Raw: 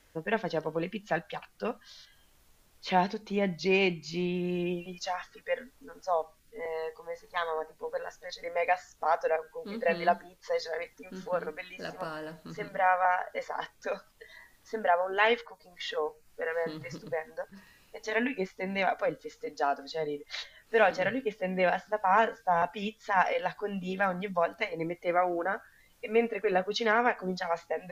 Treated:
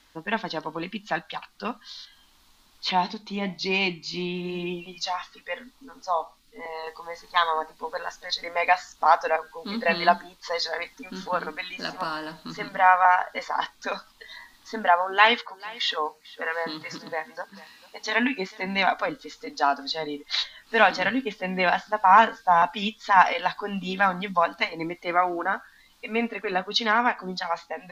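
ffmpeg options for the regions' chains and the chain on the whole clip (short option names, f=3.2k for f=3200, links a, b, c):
-filter_complex "[0:a]asettb=1/sr,asplit=3[a][b][c];[a]atrim=end=2.914[d];[b]atrim=start=2.91:end=6.87,asetpts=PTS-STARTPTS,afade=t=in:d=0.004:c=qsin,afade=t=out:st=3.956:d=0.004:c=qsin,equalizer=f=1.6k:t=o:w=0.21:g=-7,flanger=delay=6.4:depth=4.6:regen=-73:speed=1.1:shape=sinusoidal[e];[c]atrim=start=6.866[f];[d][e]acrossfade=d=0.004:c1=hsin:c2=qsin[g];[g][f]acrossfade=d=0.004:c1=qsin:c2=hsin,asettb=1/sr,asplit=3[h][i][j];[h]atrim=end=15.044[k];[i]atrim=start=15.04:end=18.67,asetpts=PTS-STARTPTS,afade=t=in:d=0.004:c=qsin,afade=t=out:st=3.626:d=0.004:c=qsin,highpass=f=180:p=1,aecho=1:1:444:0.0944,atrim=end_sample=160083[l];[j]atrim=start=18.666[m];[k][l]acrossfade=d=0.004:c1=hsin:c2=qsin[n];[n][m]acrossfade=d=0.004:c1=qsin:c2=hsin,equalizer=f=125:t=o:w=1:g=-8,equalizer=f=250:t=o:w=1:g=8,equalizer=f=500:t=o:w=1:g=-8,equalizer=f=1k:t=o:w=1:g=9,equalizer=f=4k:t=o:w=1:g=11,dynaudnorm=f=700:g=9:m=5dB"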